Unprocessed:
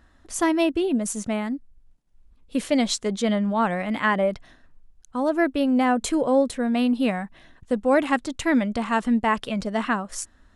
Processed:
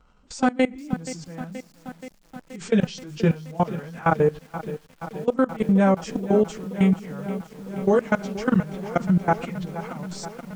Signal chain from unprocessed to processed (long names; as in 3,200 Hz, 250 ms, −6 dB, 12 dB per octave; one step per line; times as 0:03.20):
phase-vocoder pitch shift without resampling −4.5 semitones
on a send at −17 dB: convolution reverb RT60 0.90 s, pre-delay 6 ms
on the sum: output level in coarse steps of 21 dB
feedback echo at a low word length 477 ms, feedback 80%, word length 8 bits, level −14 dB
level +4.5 dB